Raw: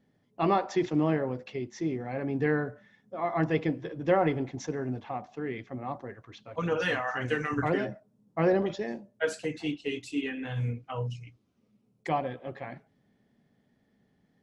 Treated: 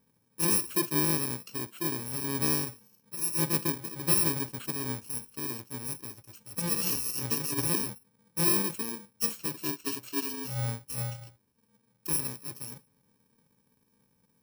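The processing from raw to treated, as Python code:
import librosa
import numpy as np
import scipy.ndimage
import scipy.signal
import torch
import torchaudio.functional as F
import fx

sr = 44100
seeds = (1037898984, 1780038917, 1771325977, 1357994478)

y = fx.bit_reversed(x, sr, seeds[0], block=64)
y = y * 10.0 ** (-1.0 / 20.0)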